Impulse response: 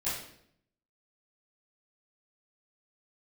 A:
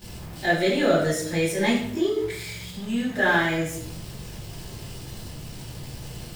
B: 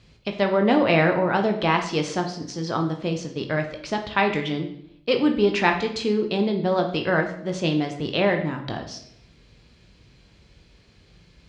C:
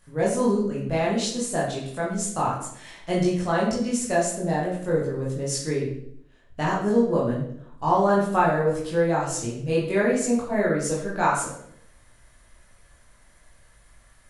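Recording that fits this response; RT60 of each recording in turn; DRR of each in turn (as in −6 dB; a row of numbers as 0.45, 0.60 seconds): A; 0.70, 0.70, 0.70 seconds; −14.0, 3.5, −6.0 decibels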